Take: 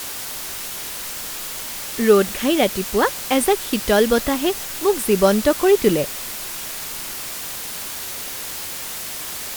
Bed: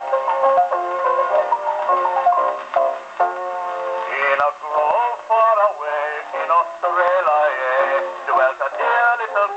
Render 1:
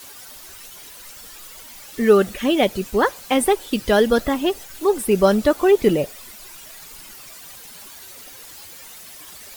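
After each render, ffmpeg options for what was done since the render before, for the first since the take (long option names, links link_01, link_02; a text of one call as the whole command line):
ffmpeg -i in.wav -af "afftdn=noise_reduction=13:noise_floor=-30" out.wav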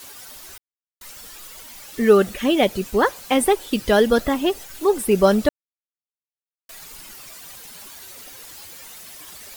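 ffmpeg -i in.wav -filter_complex "[0:a]asplit=5[link_01][link_02][link_03][link_04][link_05];[link_01]atrim=end=0.58,asetpts=PTS-STARTPTS,afade=type=out:start_time=0.576:duration=0.004:curve=hsin[link_06];[link_02]atrim=start=0.58:end=1.01,asetpts=PTS-STARTPTS,volume=0[link_07];[link_03]atrim=start=1.01:end=5.49,asetpts=PTS-STARTPTS,afade=type=in:duration=0.004:curve=hsin,afade=type=out:start_time=4.476:duration=0.004:curve=hsin[link_08];[link_04]atrim=start=5.49:end=6.69,asetpts=PTS-STARTPTS,volume=0[link_09];[link_05]atrim=start=6.69,asetpts=PTS-STARTPTS,afade=type=in:duration=0.004:curve=hsin[link_10];[link_06][link_07][link_08][link_09][link_10]concat=n=5:v=0:a=1" out.wav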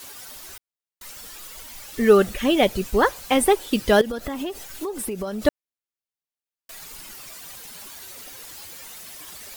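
ffmpeg -i in.wav -filter_complex "[0:a]asplit=3[link_01][link_02][link_03];[link_01]afade=type=out:start_time=1.55:duration=0.02[link_04];[link_02]asubboost=boost=2.5:cutoff=120,afade=type=in:start_time=1.55:duration=0.02,afade=type=out:start_time=3.45:duration=0.02[link_05];[link_03]afade=type=in:start_time=3.45:duration=0.02[link_06];[link_04][link_05][link_06]amix=inputs=3:normalize=0,asettb=1/sr,asplit=3[link_07][link_08][link_09];[link_07]atrim=end=4.014[link_10];[link_08]atrim=start=4.01:end=5.42,asetpts=PTS-STARTPTS,afade=type=in:duration=0.004:curve=qsin,afade=type=out:start_time=1.406:duration=0.004:curve=qsin,acompressor=threshold=-25dB:ratio=12:attack=3.2:release=140:knee=1:detection=peak[link_11];[link_09]atrim=start=5.416[link_12];[link_10][link_11]acrossfade=duration=0.004:curve1=hsin:curve2=qsin[link_13];[link_13][link_12]acrossfade=duration=0.004:curve1=qsin:curve2=hsin" out.wav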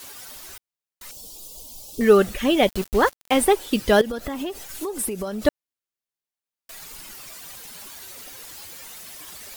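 ffmpeg -i in.wav -filter_complex "[0:a]asettb=1/sr,asplit=3[link_01][link_02][link_03];[link_01]atrim=end=1.114[link_04];[link_02]atrim=start=1.11:end=2.01,asetpts=PTS-STARTPTS,afade=type=in:duration=0.004:curve=qsin,afade=type=out:start_time=0.896:duration=0.004:curve=qsin,asuperstop=centerf=1700:order=4:qfactor=0.54[link_05];[link_03]atrim=start=2.006[link_06];[link_04][link_05]acrossfade=duration=0.004:curve1=hsin:curve2=qsin[link_07];[link_07][link_06]acrossfade=duration=0.004:curve1=qsin:curve2=hsin,asettb=1/sr,asplit=3[link_08][link_09][link_10];[link_08]atrim=end=2.694[link_11];[link_09]atrim=start=2.69:end=3.45,asetpts=PTS-STARTPTS,afade=type=in:duration=0.004:curve=qsin,afade=type=out:start_time=0.756:duration=0.004:curve=qsin,aeval=exprs='val(0)*gte(abs(val(0)),0.0376)':channel_layout=same[link_12];[link_10]atrim=start=3.446[link_13];[link_11][link_12]acrossfade=duration=0.004:curve1=hsin:curve2=qsin[link_14];[link_14][link_13]acrossfade=duration=0.004:curve1=qsin:curve2=hsin,asettb=1/sr,asplit=3[link_15][link_16][link_17];[link_15]atrim=end=4.694[link_18];[link_16]atrim=start=4.69:end=5.28,asetpts=PTS-STARTPTS,afade=type=in:duration=0.004:curve=qsin,afade=type=out:start_time=0.586:duration=0.004:curve=qsin,equalizer=frequency=10000:width_type=o:width=1.4:gain=5[link_19];[link_17]atrim=start=5.276[link_20];[link_18][link_19]acrossfade=duration=0.004:curve1=hsin:curve2=qsin[link_21];[link_21][link_20]acrossfade=duration=0.004:curve1=qsin:curve2=hsin" out.wav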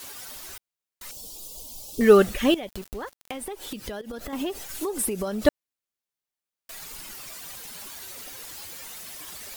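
ffmpeg -i in.wav -filter_complex "[0:a]asettb=1/sr,asplit=3[link_01][link_02][link_03];[link_01]atrim=end=2.544[link_04];[link_02]atrim=start=2.54:end=4.33,asetpts=PTS-STARTPTS,afade=type=in:duration=0.004:curve=qsin,afade=type=out:start_time=1.786:duration=0.004:curve=qsin,acompressor=threshold=-31dB:ratio=12:attack=3.2:release=140:knee=1:detection=peak[link_05];[link_03]atrim=start=4.326[link_06];[link_04][link_05]acrossfade=duration=0.004:curve1=hsin:curve2=qsin[link_07];[link_07][link_06]acrossfade=duration=0.004:curve1=qsin:curve2=hsin" out.wav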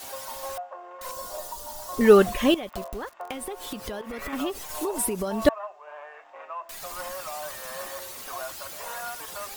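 ffmpeg -i in.wav -i bed.wav -filter_complex "[1:a]volume=-21dB[link_01];[0:a][link_01]amix=inputs=2:normalize=0" out.wav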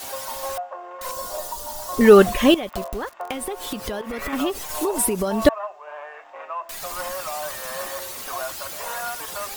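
ffmpeg -i in.wav -af "volume=5.5dB,alimiter=limit=-1dB:level=0:latency=1" out.wav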